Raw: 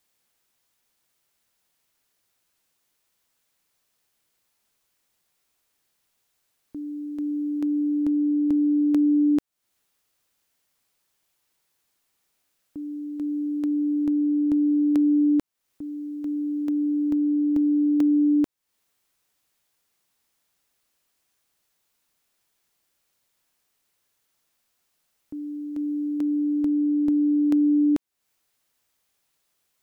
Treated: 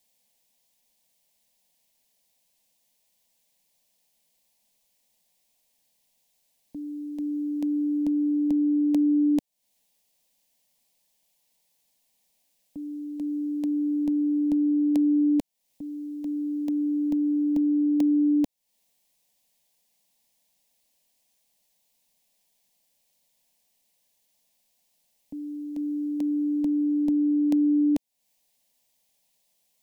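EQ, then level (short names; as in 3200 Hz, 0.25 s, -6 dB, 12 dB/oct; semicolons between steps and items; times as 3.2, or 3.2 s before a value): fixed phaser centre 360 Hz, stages 6; +3.0 dB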